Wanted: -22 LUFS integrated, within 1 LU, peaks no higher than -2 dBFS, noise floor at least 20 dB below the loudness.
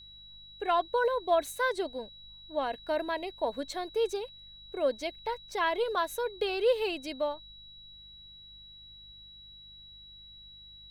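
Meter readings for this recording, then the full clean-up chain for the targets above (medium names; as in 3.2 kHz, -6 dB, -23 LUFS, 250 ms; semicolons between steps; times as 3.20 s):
hum 50 Hz; highest harmonic 200 Hz; hum level -60 dBFS; steady tone 3.9 kHz; tone level -49 dBFS; loudness -31.5 LUFS; peak level -15.0 dBFS; loudness target -22.0 LUFS
-> de-hum 50 Hz, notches 4; band-stop 3.9 kHz, Q 30; trim +9.5 dB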